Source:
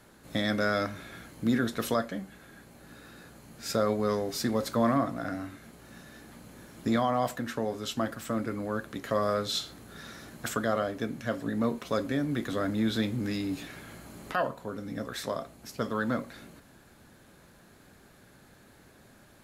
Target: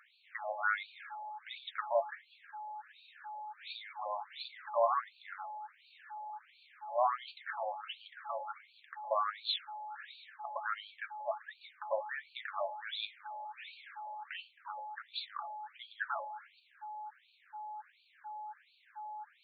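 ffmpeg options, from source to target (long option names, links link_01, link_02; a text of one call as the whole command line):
ffmpeg -i in.wav -af "aeval=exprs='val(0)+0.00794*sin(2*PI*850*n/s)':channel_layout=same,afftfilt=real='re*between(b*sr/1024,750*pow(3300/750,0.5+0.5*sin(2*PI*1.4*pts/sr))/1.41,750*pow(3300/750,0.5+0.5*sin(2*PI*1.4*pts/sr))*1.41)':imag='im*between(b*sr/1024,750*pow(3300/750,0.5+0.5*sin(2*PI*1.4*pts/sr))/1.41,750*pow(3300/750,0.5+0.5*sin(2*PI*1.4*pts/sr))*1.41)':win_size=1024:overlap=0.75,volume=1dB" out.wav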